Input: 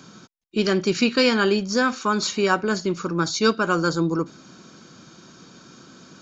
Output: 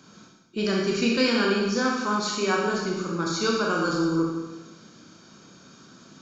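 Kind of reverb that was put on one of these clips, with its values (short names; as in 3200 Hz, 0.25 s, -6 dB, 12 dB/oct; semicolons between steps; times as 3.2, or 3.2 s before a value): Schroeder reverb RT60 1.1 s, combs from 27 ms, DRR -2 dB; gain -7 dB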